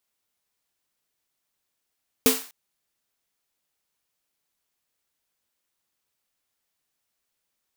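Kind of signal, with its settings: snare drum length 0.25 s, tones 260 Hz, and 450 Hz, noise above 720 Hz, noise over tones -1.5 dB, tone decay 0.24 s, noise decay 0.43 s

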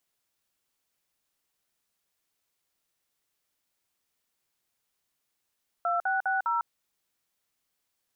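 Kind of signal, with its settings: DTMF "2660", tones 151 ms, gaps 52 ms, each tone -27 dBFS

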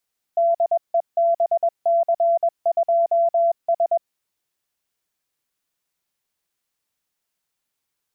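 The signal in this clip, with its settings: Morse "DEBC2S" 21 wpm 677 Hz -14.5 dBFS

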